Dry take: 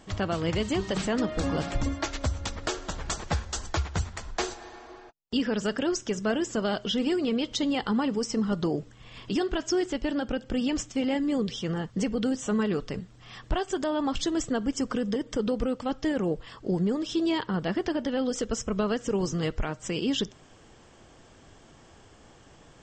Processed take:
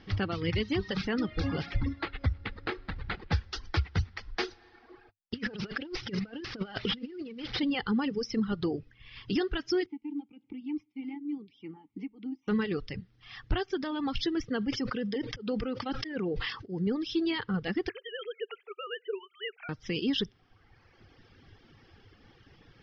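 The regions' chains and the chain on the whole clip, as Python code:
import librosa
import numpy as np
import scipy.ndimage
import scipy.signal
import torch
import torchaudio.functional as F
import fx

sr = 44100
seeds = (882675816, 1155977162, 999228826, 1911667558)

y = fx.chain(x, sr, fx.resample_bad(factor=8, down='none', up='hold'),
    fx.air_absorb(metres=150.0), at=(1.79, 3.32))
y = fx.chain(y, sr, fx.delta_mod(bps=32000, step_db=-38.0),
    fx.over_compress(threshold_db=-32.0, ratio=-0.5), at=(5.34, 7.61))
y = fx.chain(y, sr, fx.tremolo(hz=3.3, depth=0.5),
    fx.vowel_filter(vowel='u'),
    fx.band_squash(depth_pct=40), at=(9.86, 12.48))
y = fx.chain(y, sr, fx.low_shelf(hz=130.0, db=-9.5),
    fx.auto_swell(attack_ms=136.0),
    fx.sustainer(db_per_s=43.0), at=(14.48, 16.87))
y = fx.chain(y, sr, fx.sine_speech(),
    fx.brickwall_highpass(low_hz=380.0),
    fx.peak_eq(hz=640.0, db=-10.0, octaves=1.9), at=(17.89, 19.69))
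y = scipy.signal.sosfilt(scipy.signal.ellip(4, 1.0, 40, 5200.0, 'lowpass', fs=sr, output='sos'), y)
y = fx.dereverb_blind(y, sr, rt60_s=1.3)
y = fx.graphic_eq_31(y, sr, hz=(100, 630, 1000, 2000), db=(7, -12, -7, 3))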